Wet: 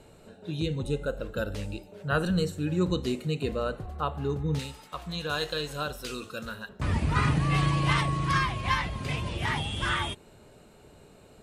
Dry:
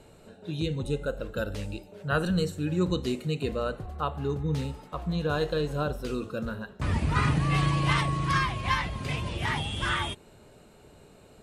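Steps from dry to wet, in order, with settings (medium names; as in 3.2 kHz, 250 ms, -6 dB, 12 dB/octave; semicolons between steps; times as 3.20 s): 4.59–6.69 s: tilt shelf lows -8 dB, about 1.2 kHz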